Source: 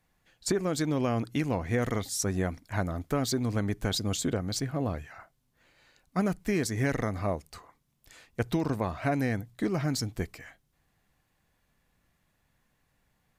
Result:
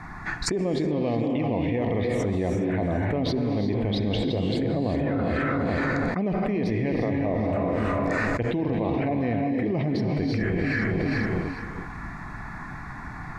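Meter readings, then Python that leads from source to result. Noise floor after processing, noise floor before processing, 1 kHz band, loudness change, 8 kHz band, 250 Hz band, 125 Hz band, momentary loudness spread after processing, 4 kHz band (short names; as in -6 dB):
-37 dBFS, -74 dBFS, +5.5 dB, +4.5 dB, n/a, +7.0 dB, +5.0 dB, 11 LU, +1.0 dB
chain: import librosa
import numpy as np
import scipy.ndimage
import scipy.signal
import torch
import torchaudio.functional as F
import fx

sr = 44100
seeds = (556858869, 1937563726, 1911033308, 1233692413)

p1 = scipy.signal.sosfilt(scipy.signal.butter(2, 2200.0, 'lowpass', fs=sr, output='sos'), x)
p2 = fx.low_shelf(p1, sr, hz=170.0, db=-8.5)
p3 = fx.notch(p2, sr, hz=1600.0, q=22.0)
p4 = fx.env_phaser(p3, sr, low_hz=520.0, high_hz=1400.0, full_db=-30.5)
p5 = p4 + fx.echo_feedback(p4, sr, ms=416, feedback_pct=29, wet_db=-16.5, dry=0)
p6 = fx.rev_gated(p5, sr, seeds[0], gate_ms=390, shape='rising', drr_db=3.0)
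y = fx.env_flatten(p6, sr, amount_pct=100)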